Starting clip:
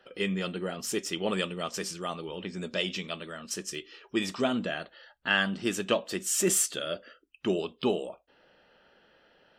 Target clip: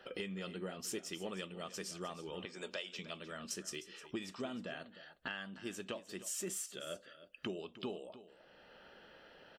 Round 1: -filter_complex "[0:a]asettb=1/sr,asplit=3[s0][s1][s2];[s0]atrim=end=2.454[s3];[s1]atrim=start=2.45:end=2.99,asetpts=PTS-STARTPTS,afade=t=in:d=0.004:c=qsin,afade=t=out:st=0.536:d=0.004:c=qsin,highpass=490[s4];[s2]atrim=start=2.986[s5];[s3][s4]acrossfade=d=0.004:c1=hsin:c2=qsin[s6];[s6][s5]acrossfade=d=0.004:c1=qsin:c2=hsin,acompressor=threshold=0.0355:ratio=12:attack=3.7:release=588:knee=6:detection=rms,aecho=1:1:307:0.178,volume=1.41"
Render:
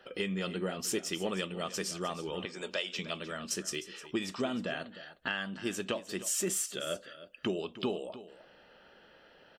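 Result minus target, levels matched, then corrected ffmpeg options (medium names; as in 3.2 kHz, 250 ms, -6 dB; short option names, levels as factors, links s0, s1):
compression: peak gain reduction -8.5 dB
-filter_complex "[0:a]asettb=1/sr,asplit=3[s0][s1][s2];[s0]atrim=end=2.454[s3];[s1]atrim=start=2.45:end=2.99,asetpts=PTS-STARTPTS,afade=t=in:d=0.004:c=qsin,afade=t=out:st=0.536:d=0.004:c=qsin,highpass=490[s4];[s2]atrim=start=2.986[s5];[s3][s4]acrossfade=d=0.004:c1=hsin:c2=qsin[s6];[s6][s5]acrossfade=d=0.004:c1=qsin:c2=hsin,acompressor=threshold=0.0119:ratio=12:attack=3.7:release=588:knee=6:detection=rms,aecho=1:1:307:0.178,volume=1.41"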